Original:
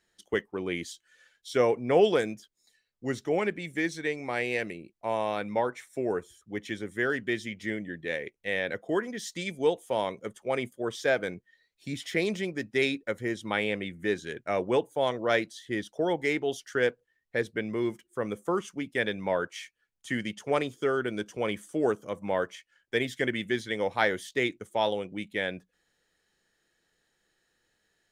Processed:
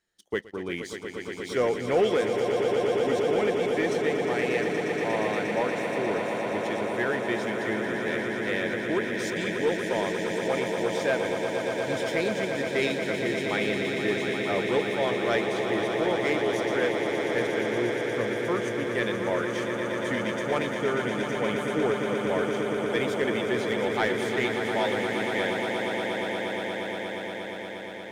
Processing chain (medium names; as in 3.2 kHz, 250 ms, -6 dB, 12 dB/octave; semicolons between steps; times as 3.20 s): echo with a slow build-up 118 ms, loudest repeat 8, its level -9 dB; waveshaping leveller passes 1; trim -4.5 dB